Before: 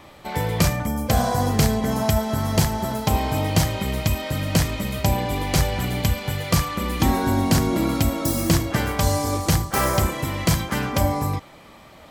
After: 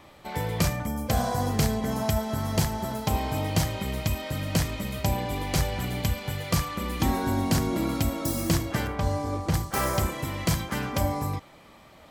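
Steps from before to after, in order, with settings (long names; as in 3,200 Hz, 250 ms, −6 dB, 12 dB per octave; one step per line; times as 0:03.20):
0:08.87–0:09.54: low-pass filter 1,700 Hz 6 dB per octave
level −5.5 dB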